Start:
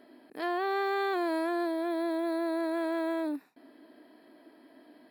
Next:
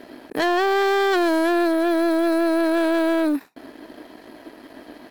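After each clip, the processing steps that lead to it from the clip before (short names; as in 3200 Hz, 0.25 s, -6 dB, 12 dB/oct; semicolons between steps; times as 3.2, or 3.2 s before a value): harmonic-percussive split percussive +6 dB; sample leveller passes 2; gain +6.5 dB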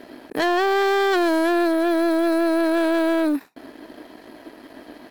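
nothing audible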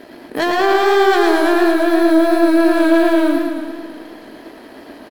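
doubler 18 ms -11 dB; warbling echo 0.111 s, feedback 67%, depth 79 cents, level -4.5 dB; gain +3 dB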